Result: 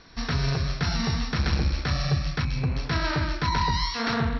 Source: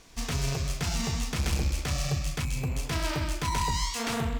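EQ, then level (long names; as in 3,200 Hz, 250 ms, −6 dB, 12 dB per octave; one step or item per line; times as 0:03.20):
Chebyshev low-pass with heavy ripple 5,700 Hz, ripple 9 dB
parametric band 150 Hz +6 dB 2.8 octaves
+8.5 dB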